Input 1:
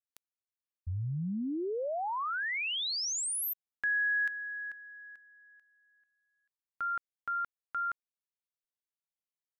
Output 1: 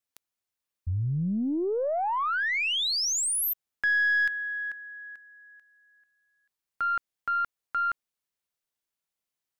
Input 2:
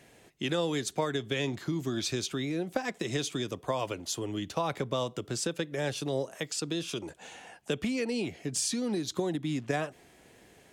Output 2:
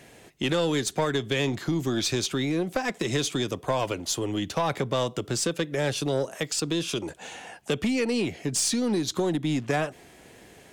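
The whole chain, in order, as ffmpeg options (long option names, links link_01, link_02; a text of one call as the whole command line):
ffmpeg -i in.wav -af "aeval=exprs='(tanh(15.8*val(0)+0.15)-tanh(0.15))/15.8':channel_layout=same,volume=7dB" out.wav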